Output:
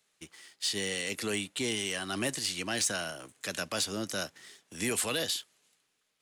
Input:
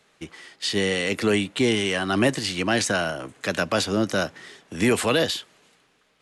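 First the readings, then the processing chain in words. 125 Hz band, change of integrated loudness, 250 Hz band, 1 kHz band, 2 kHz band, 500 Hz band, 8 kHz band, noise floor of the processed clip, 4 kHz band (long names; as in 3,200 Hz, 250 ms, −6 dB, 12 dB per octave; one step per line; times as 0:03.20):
−13.5 dB, −8.5 dB, −13.5 dB, −12.0 dB, −9.5 dB, −13.0 dB, −1.0 dB, −77 dBFS, −6.0 dB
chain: first-order pre-emphasis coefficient 0.8
leveller curve on the samples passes 1
level −3 dB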